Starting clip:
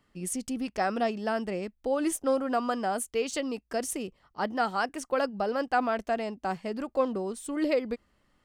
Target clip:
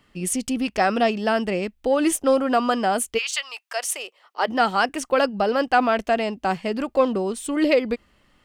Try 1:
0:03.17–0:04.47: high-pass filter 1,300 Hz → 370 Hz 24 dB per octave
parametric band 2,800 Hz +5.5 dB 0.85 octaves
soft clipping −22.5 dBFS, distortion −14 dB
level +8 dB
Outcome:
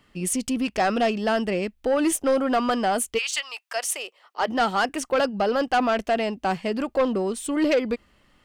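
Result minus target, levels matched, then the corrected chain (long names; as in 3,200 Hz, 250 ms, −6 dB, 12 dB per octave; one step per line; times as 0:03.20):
soft clipping: distortion +17 dB
0:03.17–0:04.47: high-pass filter 1,300 Hz → 370 Hz 24 dB per octave
parametric band 2,800 Hz +5.5 dB 0.85 octaves
soft clipping −11.5 dBFS, distortion −31 dB
level +8 dB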